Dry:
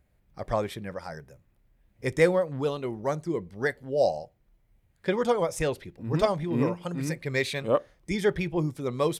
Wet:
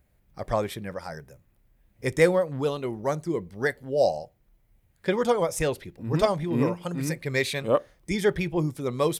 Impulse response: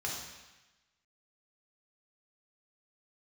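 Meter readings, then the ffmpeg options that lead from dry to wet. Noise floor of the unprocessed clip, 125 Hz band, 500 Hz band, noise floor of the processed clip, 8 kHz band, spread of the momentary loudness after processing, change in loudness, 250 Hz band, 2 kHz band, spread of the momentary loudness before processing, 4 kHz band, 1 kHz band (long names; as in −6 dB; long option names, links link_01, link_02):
−68 dBFS, +1.5 dB, +1.5 dB, −66 dBFS, +4.5 dB, 11 LU, +1.5 dB, +1.5 dB, +1.5 dB, 11 LU, +2.5 dB, +1.5 dB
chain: -af "highshelf=frequency=10000:gain=8,volume=1.5dB"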